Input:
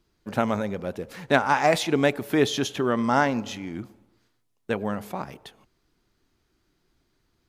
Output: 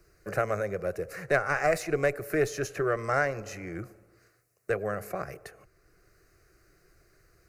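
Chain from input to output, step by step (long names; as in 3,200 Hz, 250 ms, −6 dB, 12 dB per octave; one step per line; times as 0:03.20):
one-sided soft clipper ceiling −17 dBFS
phaser with its sweep stopped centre 910 Hz, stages 6
multiband upward and downward compressor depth 40%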